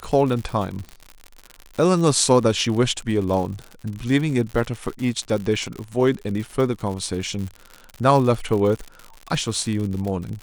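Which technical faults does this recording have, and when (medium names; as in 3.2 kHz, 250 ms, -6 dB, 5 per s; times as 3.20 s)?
crackle 95 per s -28 dBFS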